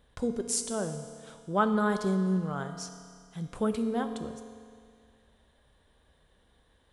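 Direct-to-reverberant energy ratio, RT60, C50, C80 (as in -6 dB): 7.0 dB, 2.1 s, 8.5 dB, 9.5 dB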